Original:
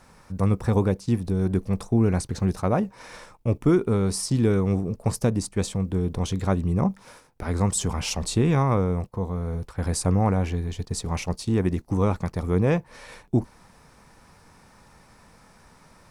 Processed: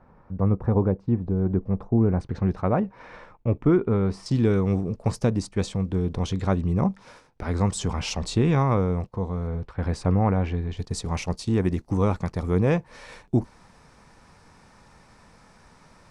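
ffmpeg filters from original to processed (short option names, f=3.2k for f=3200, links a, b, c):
-af "asetnsamples=n=441:p=0,asendcmd='2.21 lowpass f 2300;4.26 lowpass f 5800;9.47 lowpass f 3300;10.77 lowpass f 8100',lowpass=1.1k"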